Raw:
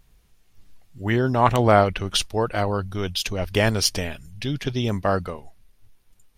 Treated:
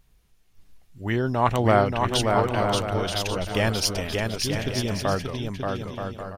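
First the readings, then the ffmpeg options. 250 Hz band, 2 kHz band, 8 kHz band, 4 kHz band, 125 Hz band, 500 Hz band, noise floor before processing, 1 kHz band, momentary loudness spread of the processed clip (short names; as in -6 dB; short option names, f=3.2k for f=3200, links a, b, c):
-1.0 dB, -1.5 dB, -1.5 dB, -1.5 dB, -1.5 dB, -1.5 dB, -59 dBFS, -1.0 dB, 10 LU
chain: -af "aecho=1:1:580|928|1137|1262|1337:0.631|0.398|0.251|0.158|0.1,volume=-3.5dB"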